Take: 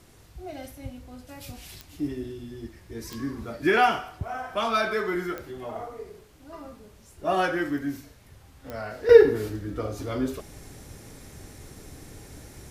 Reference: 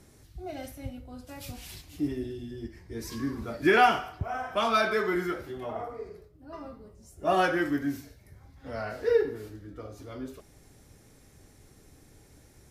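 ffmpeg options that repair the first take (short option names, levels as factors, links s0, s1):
-af "adeclick=t=4,agate=range=0.0891:threshold=0.00631,asetnsamples=n=441:p=0,asendcmd='9.09 volume volume -11dB',volume=1"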